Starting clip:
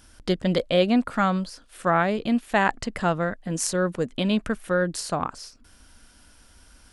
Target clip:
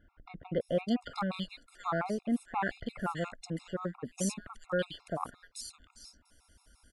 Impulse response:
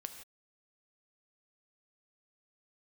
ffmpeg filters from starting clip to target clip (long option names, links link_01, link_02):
-filter_complex "[0:a]acrossover=split=2400[link_01][link_02];[link_02]adelay=610[link_03];[link_01][link_03]amix=inputs=2:normalize=0,afftfilt=real='re*gt(sin(2*PI*5.7*pts/sr)*(1-2*mod(floor(b*sr/1024/700),2)),0)':imag='im*gt(sin(2*PI*5.7*pts/sr)*(1-2*mod(floor(b*sr/1024/700),2)),0)':win_size=1024:overlap=0.75,volume=-7dB"